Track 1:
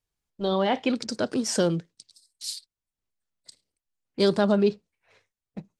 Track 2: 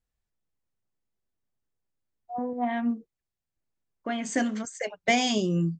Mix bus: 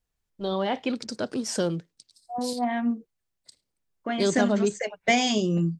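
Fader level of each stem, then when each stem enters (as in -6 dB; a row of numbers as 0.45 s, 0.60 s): -3.0 dB, +1.5 dB; 0.00 s, 0.00 s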